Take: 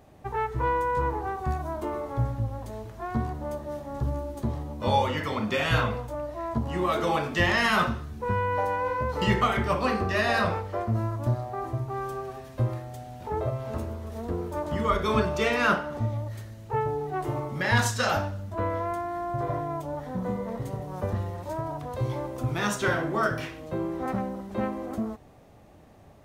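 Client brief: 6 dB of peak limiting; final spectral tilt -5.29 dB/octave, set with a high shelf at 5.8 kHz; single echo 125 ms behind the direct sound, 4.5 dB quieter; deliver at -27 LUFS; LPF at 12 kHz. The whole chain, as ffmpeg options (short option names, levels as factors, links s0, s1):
-af "lowpass=12000,highshelf=f=5800:g=5.5,alimiter=limit=0.168:level=0:latency=1,aecho=1:1:125:0.596,volume=1.12"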